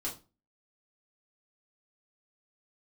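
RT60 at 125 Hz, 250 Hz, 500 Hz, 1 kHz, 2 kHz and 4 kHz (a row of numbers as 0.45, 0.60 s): 0.40, 0.40, 0.30, 0.30, 0.25, 0.25 s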